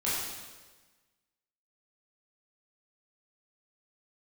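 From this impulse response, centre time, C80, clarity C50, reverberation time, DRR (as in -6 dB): 91 ms, 1.5 dB, -1.5 dB, 1.3 s, -9.5 dB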